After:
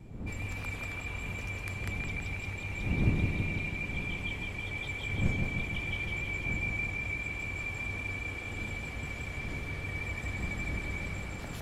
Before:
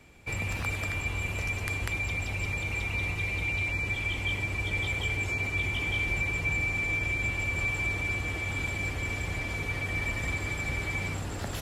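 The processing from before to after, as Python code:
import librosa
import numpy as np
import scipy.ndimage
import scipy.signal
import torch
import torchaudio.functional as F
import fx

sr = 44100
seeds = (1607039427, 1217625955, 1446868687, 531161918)

y = fx.dmg_wind(x, sr, seeds[0], corner_hz=160.0, level_db=-32.0)
y = fx.vibrato(y, sr, rate_hz=5.0, depth_cents=29.0)
y = fx.echo_bbd(y, sr, ms=163, stages=4096, feedback_pct=69, wet_db=-4.0)
y = y * 10.0 ** (-8.5 / 20.0)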